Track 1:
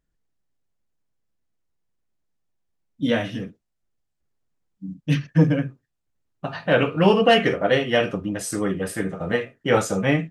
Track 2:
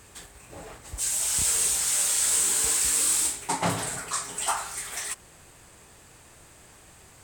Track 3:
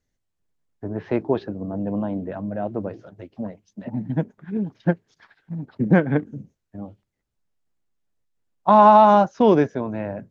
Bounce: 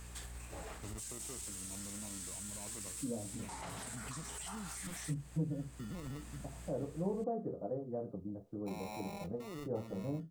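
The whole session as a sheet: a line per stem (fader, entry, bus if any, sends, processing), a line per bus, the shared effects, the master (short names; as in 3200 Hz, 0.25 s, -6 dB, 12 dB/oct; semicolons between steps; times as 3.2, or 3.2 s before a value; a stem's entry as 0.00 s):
-9.5 dB, 0.00 s, no bus, no send, Bessel low-pass 550 Hz, order 8; requantised 12-bit, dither none; three-band expander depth 40%
-3.0 dB, 0.00 s, bus A, no send, low shelf 340 Hz -8.5 dB; compressor, threshold -33 dBFS, peak gain reduction 12 dB; hum 60 Hz, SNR 17 dB
-17.0 dB, 0.00 s, bus A, no send, limiter -15.5 dBFS, peak gain reduction 11.5 dB; sample-rate reducer 1600 Hz, jitter 0%
bus A: 0.0 dB, low shelf 130 Hz +11.5 dB; limiter -34 dBFS, peak gain reduction 11 dB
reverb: off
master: compressor 2:1, threshold -42 dBFS, peak gain reduction 13 dB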